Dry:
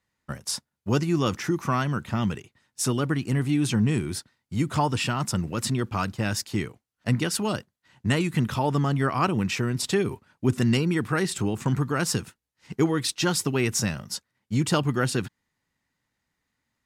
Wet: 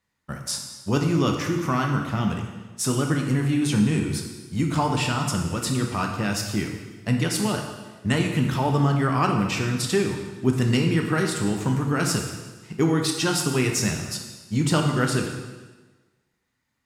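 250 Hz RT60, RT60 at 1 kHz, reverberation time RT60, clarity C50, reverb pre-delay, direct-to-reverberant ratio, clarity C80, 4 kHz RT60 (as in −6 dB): 1.3 s, 1.3 s, 1.3 s, 4.5 dB, 7 ms, 2.0 dB, 6.5 dB, 1.2 s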